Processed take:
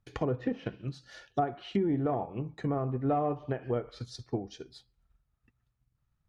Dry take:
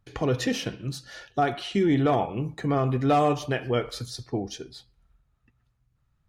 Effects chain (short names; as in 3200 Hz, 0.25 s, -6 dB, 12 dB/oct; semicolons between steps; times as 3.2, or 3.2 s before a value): treble ducked by the level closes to 1100 Hz, closed at -22 dBFS; transient shaper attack +5 dB, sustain -2 dB; gain -7.5 dB